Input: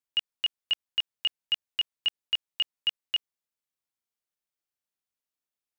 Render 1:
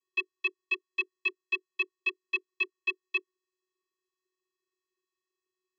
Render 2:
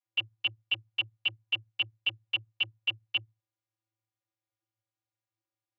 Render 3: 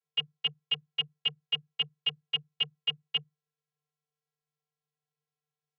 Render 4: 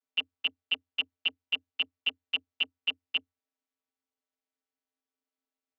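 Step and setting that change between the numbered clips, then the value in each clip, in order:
channel vocoder, frequency: 370, 110, 150, 88 Hertz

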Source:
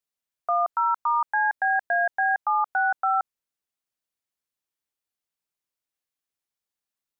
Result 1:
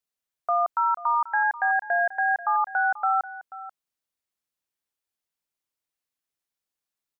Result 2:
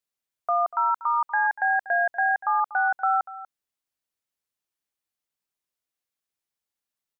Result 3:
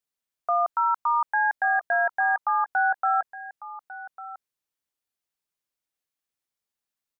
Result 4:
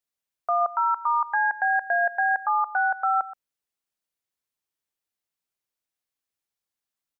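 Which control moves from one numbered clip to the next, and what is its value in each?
single-tap delay, delay time: 486, 240, 1,149, 125 milliseconds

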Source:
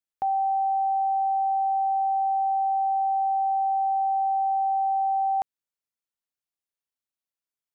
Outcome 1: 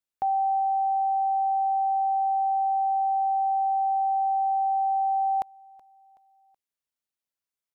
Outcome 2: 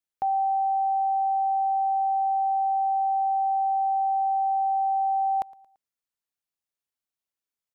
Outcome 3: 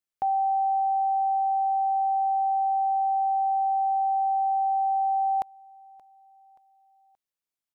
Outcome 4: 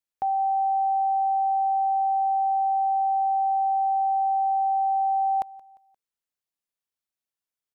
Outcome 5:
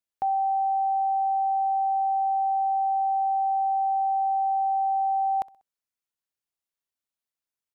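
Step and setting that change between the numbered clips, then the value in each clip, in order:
repeating echo, delay time: 375, 113, 577, 175, 64 milliseconds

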